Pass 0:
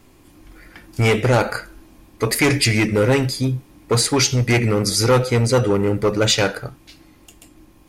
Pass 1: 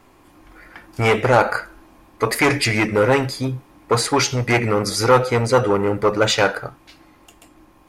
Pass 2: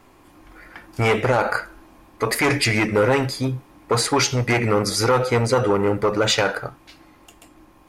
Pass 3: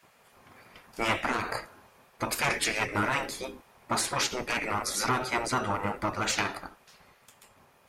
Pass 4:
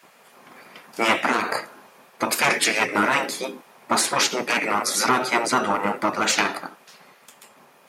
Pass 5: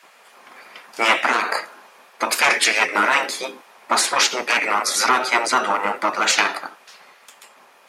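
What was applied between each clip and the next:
parametric band 1,000 Hz +11 dB 2.4 octaves; level −5 dB
brickwall limiter −8 dBFS, peak gain reduction 6.5 dB
gate on every frequency bin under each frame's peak −10 dB weak; level −3.5 dB
high-pass filter 170 Hz 24 dB per octave; level +8 dB
meter weighting curve A; level +3 dB

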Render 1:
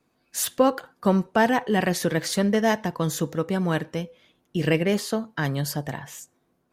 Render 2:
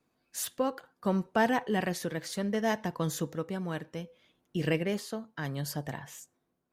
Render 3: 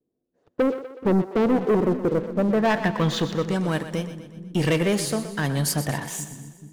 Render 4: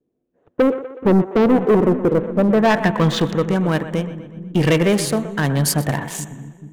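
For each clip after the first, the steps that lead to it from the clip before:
amplitude tremolo 0.67 Hz, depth 45%; level −6 dB
low-pass filter sweep 420 Hz → 10,000 Hz, 0:02.09–0:03.69; leveller curve on the samples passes 3; echo with a time of its own for lows and highs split 330 Hz, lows 430 ms, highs 123 ms, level −11.5 dB
adaptive Wiener filter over 9 samples; level +6 dB

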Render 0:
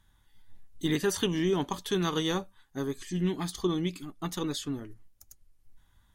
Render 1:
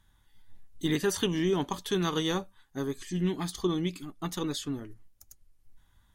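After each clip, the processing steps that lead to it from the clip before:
no processing that can be heard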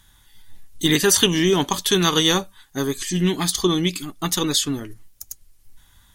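high-shelf EQ 2,200 Hz +10.5 dB
level +8.5 dB

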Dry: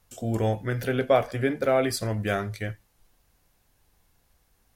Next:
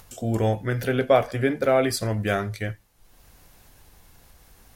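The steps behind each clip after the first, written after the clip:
upward compression, threshold −43 dBFS
level +2.5 dB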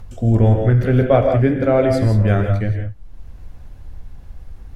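RIAA equalisation playback
reverb whose tail is shaped and stops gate 200 ms rising, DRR 4 dB
level +1 dB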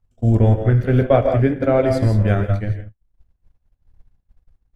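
echo ahead of the sound 62 ms −23 dB
transient designer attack +1 dB, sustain −6 dB
downward expander −17 dBFS
level −1 dB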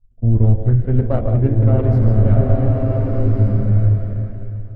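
phase distortion by the signal itself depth 0.23 ms
spectral tilt −4 dB per octave
slow-attack reverb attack 1,470 ms, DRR −0.5 dB
level −11 dB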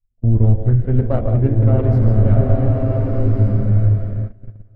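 reversed playback
upward compression, threshold −26 dBFS
reversed playback
noise gate −22 dBFS, range −17 dB

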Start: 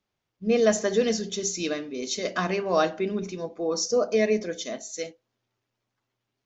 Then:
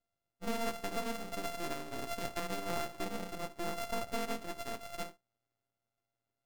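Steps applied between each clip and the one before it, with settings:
samples sorted by size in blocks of 64 samples
downward compressor 4 to 1, threshold −28 dBFS, peak gain reduction 11.5 dB
half-wave rectification
level −3 dB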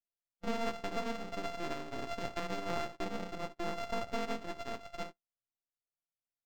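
noise gate −44 dBFS, range −21 dB
linearly interpolated sample-rate reduction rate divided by 4×
level +1 dB

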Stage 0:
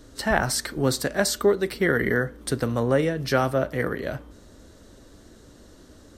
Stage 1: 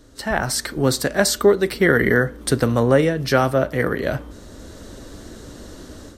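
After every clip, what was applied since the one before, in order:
automatic gain control gain up to 12.5 dB
level −1 dB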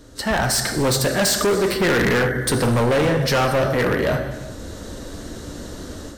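reverb whose tail is shaped and stops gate 450 ms falling, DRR 6.5 dB
gain into a clipping stage and back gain 19.5 dB
level +4 dB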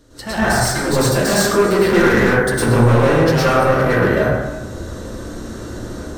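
dense smooth reverb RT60 0.78 s, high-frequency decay 0.3×, pre-delay 95 ms, DRR −9.5 dB
level −6 dB

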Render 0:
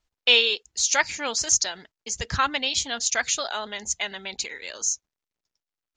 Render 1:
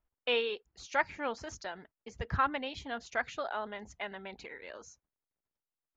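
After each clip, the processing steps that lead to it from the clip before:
low-pass filter 1,500 Hz 12 dB per octave
level −4 dB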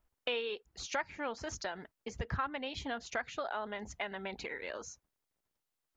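downward compressor 3 to 1, threshold −42 dBFS, peak gain reduction 14 dB
level +6 dB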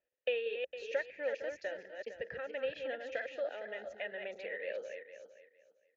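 feedback delay that plays each chunk backwards 229 ms, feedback 44%, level −5.5 dB
formant filter e
level +8 dB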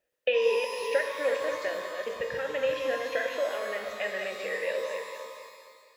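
reverb with rising layers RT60 1.7 s, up +12 semitones, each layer −8 dB, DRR 4 dB
level +7.5 dB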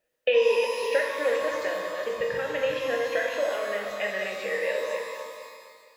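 convolution reverb RT60 0.85 s, pre-delay 6 ms, DRR 5.5 dB
level +2 dB

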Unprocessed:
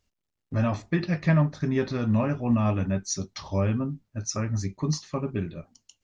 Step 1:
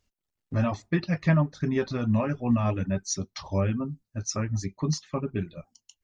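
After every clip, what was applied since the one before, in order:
reverb reduction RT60 0.57 s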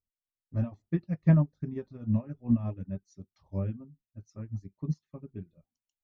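tilt shelving filter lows +8.5 dB, about 720 Hz
expander for the loud parts 2.5 to 1, over −25 dBFS
level −4.5 dB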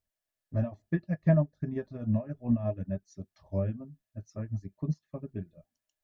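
downward compressor 1.5 to 1, threshold −38 dBFS, peak gain reduction 8 dB
hollow resonant body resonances 630/1,700 Hz, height 13 dB, ringing for 45 ms
level +4.5 dB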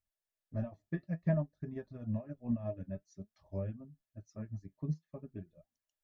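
flanger 0.52 Hz, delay 0.4 ms, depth 7.2 ms, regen +68%
level −2.5 dB

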